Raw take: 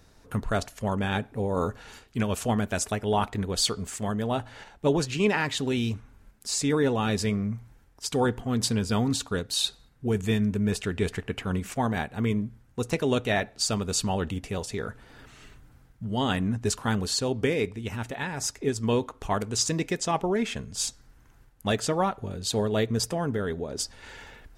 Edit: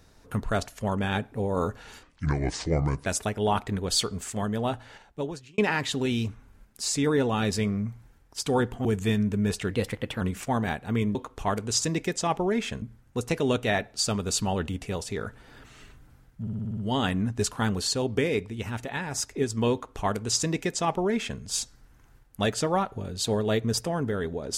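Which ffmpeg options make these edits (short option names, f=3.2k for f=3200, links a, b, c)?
-filter_complex "[0:a]asplit=15[a][b][c][d][e][f][g][h][i][j][k][l][m][n][o];[a]atrim=end=2.034[p];[b]atrim=start=2.03:end=2.72,asetpts=PTS-STARTPTS,asetrate=29547,aresample=44100,atrim=end_sample=45416,asetpts=PTS-STARTPTS[q];[c]atrim=start=2.716:end=5.24,asetpts=PTS-STARTPTS,afade=t=out:st=1.594:d=0.93[r];[d]atrim=start=5.24:end=8.512,asetpts=PTS-STARTPTS,afade=t=in:d=0.004:c=hsin[s];[e]atrim=start=10.068:end=10.934[t];[f]atrim=start=10.93:end=11.5,asetpts=PTS-STARTPTS,asetrate=50274,aresample=44100,atrim=end_sample=22050,asetpts=PTS-STARTPTS[u];[g]atrim=start=11.496:end=12.442[v];[h]atrim=start=18.988:end=20.662[w];[i]atrim=start=12.438:end=16.092[x];[j]atrim=start=16.028:end=16.092[y];[k]atrim=start=16.028:end=16.092[z];[l]atrim=start=16.028:end=16.092[aa];[m]atrim=start=16.028:end=16.092[ab];[n]atrim=start=16.028:end=16.092[ac];[o]atrim=start=16.028[ad];[p][q]acrossfade=d=0.004:c1=hsin:c2=hsin[ae];[r][s]concat=n=2:v=0:a=1[af];[ae][af]acrossfade=d=0.004:c1=hsin:c2=hsin[ag];[ag][t]acrossfade=d=0.004:c1=hsin:c2=hsin[ah];[ah][u]acrossfade=d=0.004:c1=hsin:c2=hsin[ai];[ai][v]acrossfade=d=0.004:c1=hsin:c2=hsin[aj];[aj][w]acrossfade=d=0.004:c1=hsin:c2=hsin[ak];[ak][x]acrossfade=d=0.004:c1=hsin:c2=hsin[al];[al][y]acrossfade=d=0.004:c1=hsin:c2=hsin[am];[am][z]acrossfade=d=0.004:c1=hsin:c2=hsin[an];[an][aa]acrossfade=d=0.004:c1=hsin:c2=hsin[ao];[ao][ab]acrossfade=d=0.004:c1=hsin:c2=hsin[ap];[ap][ac]acrossfade=d=0.004:c1=hsin:c2=hsin[aq];[aq][ad]acrossfade=d=0.004:c1=hsin:c2=hsin"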